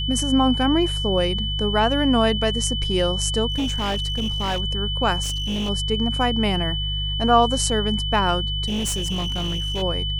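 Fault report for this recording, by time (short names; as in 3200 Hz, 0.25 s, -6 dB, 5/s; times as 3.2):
hum 50 Hz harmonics 3 -27 dBFS
tone 3000 Hz -26 dBFS
3.5–4.6 clipped -19.5 dBFS
5.22–5.7 clipped -21.5 dBFS
8.66–9.83 clipped -21 dBFS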